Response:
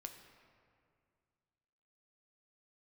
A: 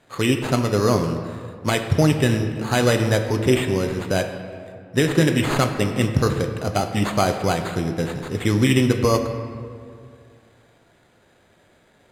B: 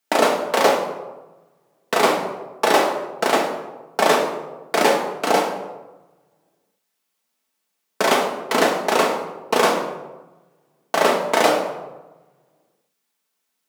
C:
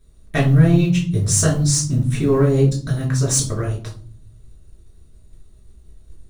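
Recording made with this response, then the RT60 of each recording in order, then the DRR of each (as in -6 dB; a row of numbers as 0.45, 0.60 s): A; 2.2 s, 1.1 s, not exponential; 4.5, -1.0, -4.5 dB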